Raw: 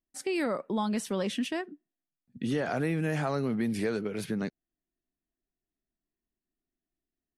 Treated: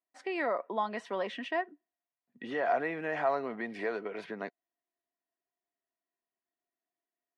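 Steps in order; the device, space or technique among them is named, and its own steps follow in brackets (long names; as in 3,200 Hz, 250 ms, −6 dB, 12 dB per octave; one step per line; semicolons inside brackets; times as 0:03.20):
tin-can telephone (band-pass filter 470–2,500 Hz; hollow resonant body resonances 700/990/1,900 Hz, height 10 dB)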